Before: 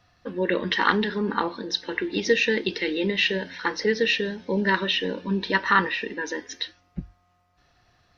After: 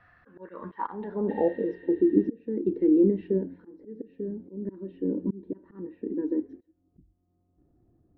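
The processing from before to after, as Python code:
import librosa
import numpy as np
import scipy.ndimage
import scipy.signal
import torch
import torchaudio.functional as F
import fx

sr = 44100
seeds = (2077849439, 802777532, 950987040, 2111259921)

y = fx.spec_repair(x, sr, seeds[0], start_s=1.32, length_s=0.97, low_hz=900.0, high_hz=4500.0, source='after')
y = fx.auto_swell(y, sr, attack_ms=522.0)
y = fx.filter_sweep_lowpass(y, sr, from_hz=1700.0, to_hz=320.0, start_s=0.19, end_s=2.04, q=3.6)
y = F.gain(torch.from_numpy(y), -1.0).numpy()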